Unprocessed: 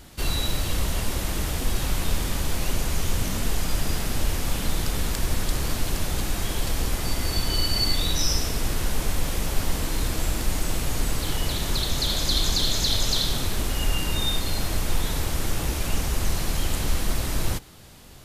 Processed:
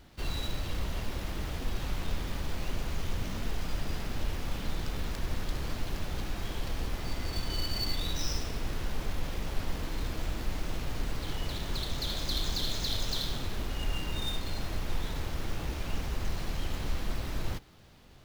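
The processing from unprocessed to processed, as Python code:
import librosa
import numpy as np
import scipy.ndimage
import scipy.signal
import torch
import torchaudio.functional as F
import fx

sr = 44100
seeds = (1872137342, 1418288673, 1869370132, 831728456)

y = scipy.ndimage.median_filter(x, 5, mode='constant')
y = y * 10.0 ** (-8.0 / 20.0)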